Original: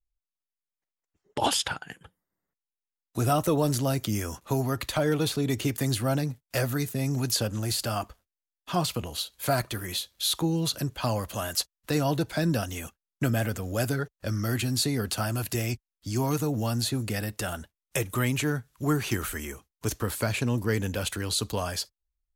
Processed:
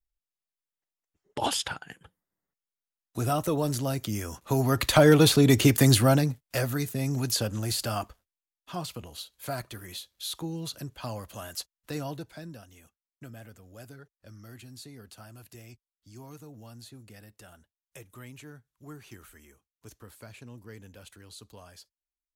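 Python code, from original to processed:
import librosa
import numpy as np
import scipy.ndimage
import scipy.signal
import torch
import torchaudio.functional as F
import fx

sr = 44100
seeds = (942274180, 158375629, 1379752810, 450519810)

y = fx.gain(x, sr, db=fx.line((4.3, -3.0), (4.95, 8.0), (5.94, 8.0), (6.55, -1.0), (7.99, -1.0), (8.74, -8.5), (12.01, -8.5), (12.59, -19.5)))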